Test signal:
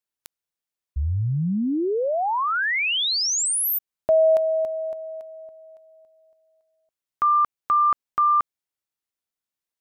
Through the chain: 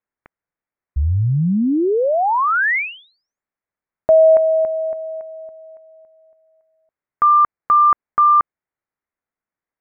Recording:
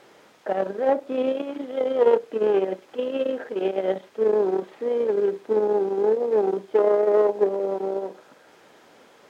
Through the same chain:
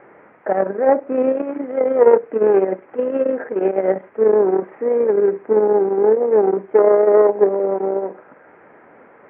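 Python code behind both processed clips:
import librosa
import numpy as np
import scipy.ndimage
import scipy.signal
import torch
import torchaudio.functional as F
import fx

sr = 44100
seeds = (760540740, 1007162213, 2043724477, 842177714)

y = scipy.signal.sosfilt(scipy.signal.butter(8, 2200.0, 'lowpass', fs=sr, output='sos'), x)
y = y * librosa.db_to_amplitude(6.5)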